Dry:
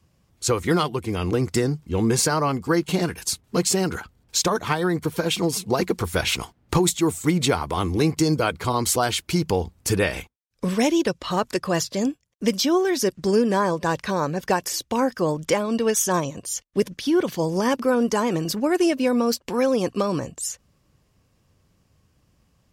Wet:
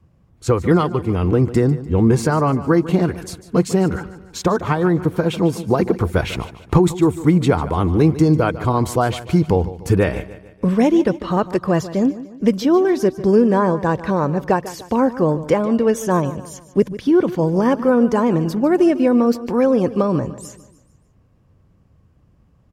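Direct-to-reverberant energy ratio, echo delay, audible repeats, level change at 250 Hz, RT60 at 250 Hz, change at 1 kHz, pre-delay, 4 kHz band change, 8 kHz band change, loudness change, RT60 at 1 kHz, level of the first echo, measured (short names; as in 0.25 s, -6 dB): none, 0.148 s, 3, +6.5 dB, none, +3.5 dB, none, -7.0 dB, -9.5 dB, +5.0 dB, none, -15.5 dB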